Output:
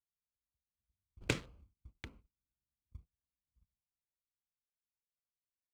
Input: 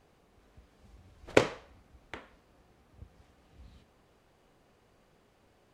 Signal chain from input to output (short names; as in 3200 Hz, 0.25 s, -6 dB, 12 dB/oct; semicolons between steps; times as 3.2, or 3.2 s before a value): Wiener smoothing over 25 samples; Doppler pass-by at 2.08, 20 m/s, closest 12 m; gate -57 dBFS, range -33 dB; passive tone stack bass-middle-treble 6-0-2; in parallel at -12 dB: sample-and-hold 39×; on the sum: gain +15 dB